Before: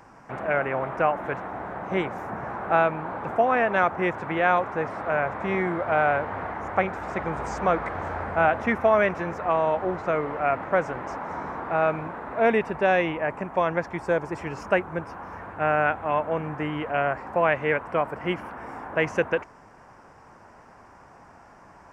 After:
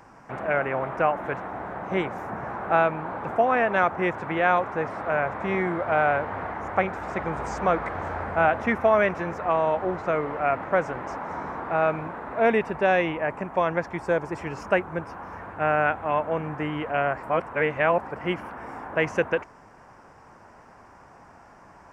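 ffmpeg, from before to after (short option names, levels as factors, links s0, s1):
-filter_complex "[0:a]asplit=3[s0][s1][s2];[s0]atrim=end=17.232[s3];[s1]atrim=start=17.228:end=18.112,asetpts=PTS-STARTPTS,areverse[s4];[s2]atrim=start=18.108[s5];[s3][s4]acrossfade=d=0.004:c1=hsin:c2=hsin[s6];[s6][s5]acrossfade=d=0.004:c1=hsin:c2=hsin"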